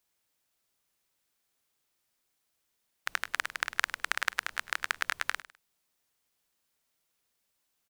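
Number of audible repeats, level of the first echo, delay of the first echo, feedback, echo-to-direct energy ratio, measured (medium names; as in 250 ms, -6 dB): 2, -16.0 dB, 102 ms, 25%, -16.0 dB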